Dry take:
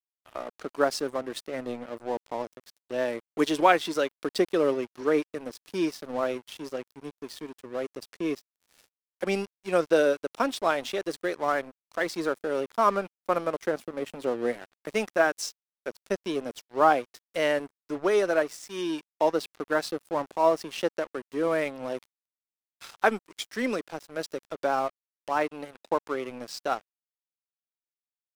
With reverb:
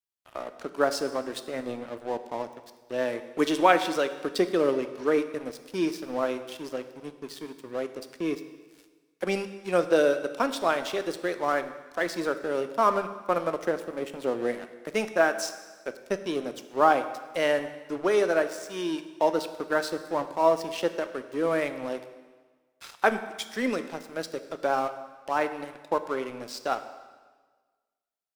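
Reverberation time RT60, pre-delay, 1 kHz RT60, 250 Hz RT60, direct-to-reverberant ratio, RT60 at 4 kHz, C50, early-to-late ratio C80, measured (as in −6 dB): 1.4 s, 6 ms, 1.4 s, 1.4 s, 9.5 dB, 1.3 s, 11.5 dB, 13.0 dB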